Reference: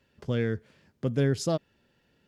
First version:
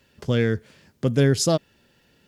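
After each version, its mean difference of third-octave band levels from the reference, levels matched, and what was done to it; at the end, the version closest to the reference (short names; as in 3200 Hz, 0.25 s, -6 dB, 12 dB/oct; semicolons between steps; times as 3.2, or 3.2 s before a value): 1.5 dB: high shelf 4000 Hz +8 dB; gain +6.5 dB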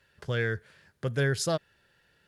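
3.5 dB: fifteen-band EQ 250 Hz -11 dB, 1600 Hz +9 dB, 4000 Hz +4 dB, 10000 Hz +9 dB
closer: first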